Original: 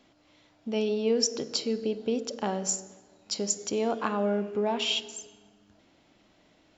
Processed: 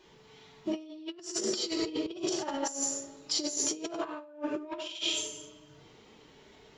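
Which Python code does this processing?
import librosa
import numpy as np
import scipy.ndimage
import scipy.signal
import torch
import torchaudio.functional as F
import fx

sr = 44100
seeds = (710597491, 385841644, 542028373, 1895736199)

y = fx.pitch_keep_formants(x, sr, semitones=6.5)
y = fx.rev_gated(y, sr, seeds[0], gate_ms=300, shape='falling', drr_db=-3.5)
y = fx.over_compress(y, sr, threshold_db=-30.0, ratio=-0.5)
y = y * 10.0 ** (-4.0 / 20.0)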